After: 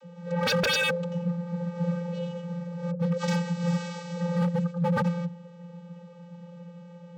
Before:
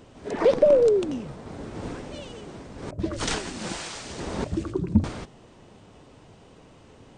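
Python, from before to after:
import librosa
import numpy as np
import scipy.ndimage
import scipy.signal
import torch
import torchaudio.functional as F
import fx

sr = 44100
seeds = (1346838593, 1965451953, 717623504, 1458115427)

y = scipy.signal.sosfilt(scipy.signal.butter(2, 130.0, 'highpass', fs=sr, output='sos'), x)
y = fx.vocoder(y, sr, bands=32, carrier='square', carrier_hz=173.0)
y = 10.0 ** (-27.0 / 20.0) * (np.abs((y / 10.0 ** (-27.0 / 20.0) + 3.0) % 4.0 - 2.0) - 1.0)
y = y * librosa.db_to_amplitude(7.0)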